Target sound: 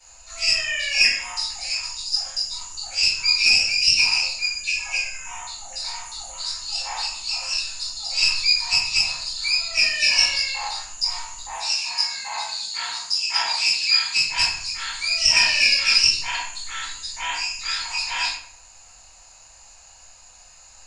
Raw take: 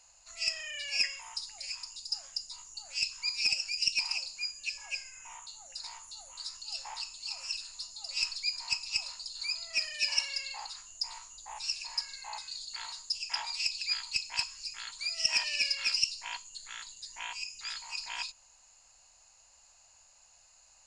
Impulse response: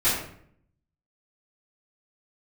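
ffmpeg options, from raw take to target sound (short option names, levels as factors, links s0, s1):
-filter_complex "[0:a]asettb=1/sr,asplit=3[s0][s1][s2];[s0]atrim=end=11.444[s3];[s1]atrim=start=11.44:end=14.19,asetpts=PTS-STARTPTS,afade=t=in:d=0.004:c=qsin,afade=t=out:st=2.746:d=0.004:c=qsin,highpass=f=120:w=0.5412,highpass=f=120:w=1.3066[s4];[s2]atrim=start=14.186[s5];[s3][s4]acrossfade=d=0.004:c1=hsin:c2=qsin[s6];[s6][s5]acrossfade=d=0.004:c1=qsin:c2=hsin[s7];[1:a]atrim=start_sample=2205[s8];[s7][s8]afir=irnorm=-1:irlink=0"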